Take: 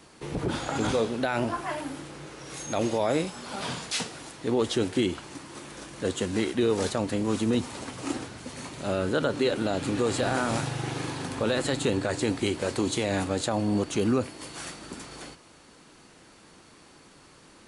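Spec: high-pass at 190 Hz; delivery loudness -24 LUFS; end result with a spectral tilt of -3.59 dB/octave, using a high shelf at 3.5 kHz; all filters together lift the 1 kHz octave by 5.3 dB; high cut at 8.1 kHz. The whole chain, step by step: high-pass 190 Hz; low-pass 8.1 kHz; peaking EQ 1 kHz +7.5 dB; treble shelf 3.5 kHz -5 dB; trim +4 dB

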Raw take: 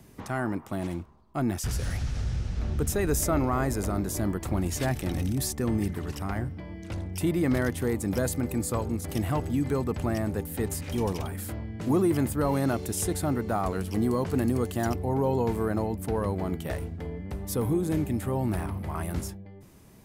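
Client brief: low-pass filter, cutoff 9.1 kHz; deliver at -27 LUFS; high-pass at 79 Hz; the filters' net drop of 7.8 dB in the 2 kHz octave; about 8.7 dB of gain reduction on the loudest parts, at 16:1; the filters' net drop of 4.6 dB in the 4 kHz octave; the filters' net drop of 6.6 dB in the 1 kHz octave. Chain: high-pass 79 Hz; low-pass 9.1 kHz; peaking EQ 1 kHz -7.5 dB; peaking EQ 2 kHz -6.5 dB; peaking EQ 4 kHz -4 dB; compression 16:1, threshold -30 dBFS; trim +9 dB

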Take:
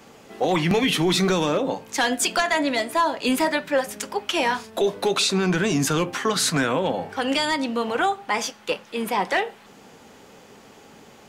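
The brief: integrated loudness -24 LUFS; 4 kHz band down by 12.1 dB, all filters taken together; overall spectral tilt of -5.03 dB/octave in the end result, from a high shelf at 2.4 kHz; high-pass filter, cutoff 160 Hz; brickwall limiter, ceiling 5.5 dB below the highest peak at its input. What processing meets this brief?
high-pass 160 Hz; treble shelf 2.4 kHz -7.5 dB; peaking EQ 4 kHz -9 dB; trim +3 dB; peak limiter -14 dBFS

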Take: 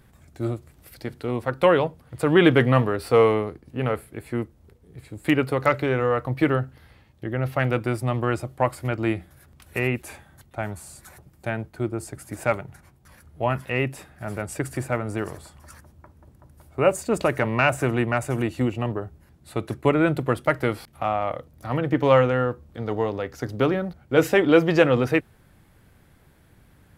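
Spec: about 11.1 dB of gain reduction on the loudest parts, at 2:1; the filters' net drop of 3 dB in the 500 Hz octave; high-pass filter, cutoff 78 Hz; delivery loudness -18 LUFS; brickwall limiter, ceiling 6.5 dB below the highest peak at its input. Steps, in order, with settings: high-pass 78 Hz; peaking EQ 500 Hz -3.5 dB; compression 2:1, threshold -34 dBFS; trim +17.5 dB; peak limiter -4 dBFS

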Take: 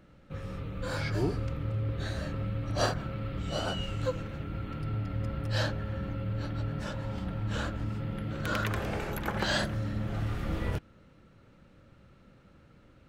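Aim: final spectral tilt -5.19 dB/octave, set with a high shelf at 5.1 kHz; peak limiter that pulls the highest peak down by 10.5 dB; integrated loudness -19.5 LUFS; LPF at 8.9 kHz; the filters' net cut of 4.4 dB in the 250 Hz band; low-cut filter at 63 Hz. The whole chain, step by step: high-pass 63 Hz; low-pass 8.9 kHz; peaking EQ 250 Hz -6.5 dB; treble shelf 5.1 kHz -3 dB; trim +17.5 dB; peak limiter -9 dBFS

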